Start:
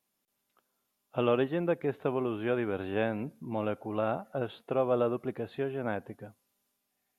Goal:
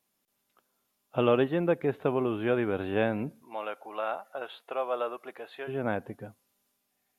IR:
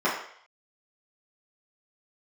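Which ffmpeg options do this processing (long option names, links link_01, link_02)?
-filter_complex "[0:a]asplit=3[link_01][link_02][link_03];[link_01]afade=type=out:start_time=3.4:duration=0.02[link_04];[link_02]highpass=750,afade=type=in:start_time=3.4:duration=0.02,afade=type=out:start_time=5.67:duration=0.02[link_05];[link_03]afade=type=in:start_time=5.67:duration=0.02[link_06];[link_04][link_05][link_06]amix=inputs=3:normalize=0,volume=3dB"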